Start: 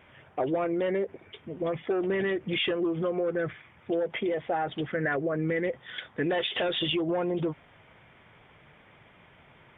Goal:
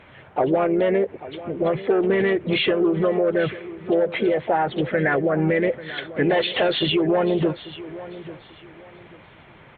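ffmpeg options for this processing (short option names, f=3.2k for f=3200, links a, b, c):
-filter_complex "[0:a]lowpass=f=3.2k:p=1,asplit=2[a][b];[b]asetrate=52444,aresample=44100,atempo=0.840896,volume=-11dB[c];[a][c]amix=inputs=2:normalize=0,asplit=2[d][e];[e]aecho=0:1:841|1682|2523:0.158|0.0444|0.0124[f];[d][f]amix=inputs=2:normalize=0,volume=8dB" -ar 48000 -c:a libopus -b:a 64k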